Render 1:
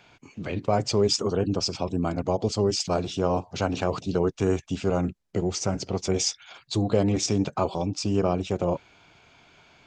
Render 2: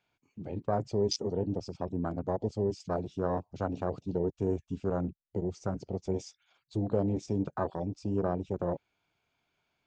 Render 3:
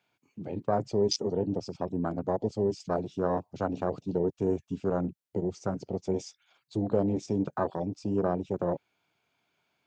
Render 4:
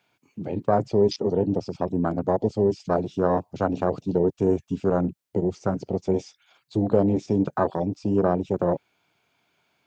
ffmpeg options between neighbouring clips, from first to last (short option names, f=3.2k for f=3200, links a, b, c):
-af "afwtdn=0.0447,volume=-6.5dB"
-af "highpass=120,volume=3dB"
-filter_complex "[0:a]acrossover=split=4000[a][b];[b]acompressor=threshold=-57dB:ratio=4:attack=1:release=60[c];[a][c]amix=inputs=2:normalize=0,volume=6.5dB"